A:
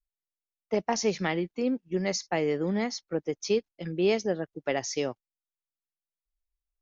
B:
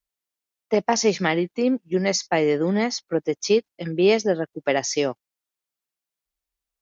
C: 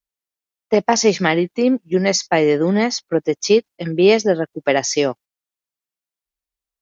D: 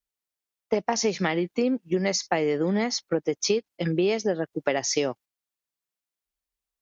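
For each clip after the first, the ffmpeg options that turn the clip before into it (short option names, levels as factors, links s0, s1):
-af "highpass=f=130:p=1,volume=2.37"
-af "agate=range=0.398:threshold=0.00794:ratio=16:detection=peak,volume=1.78"
-af "acompressor=threshold=0.1:ratio=6,volume=0.891"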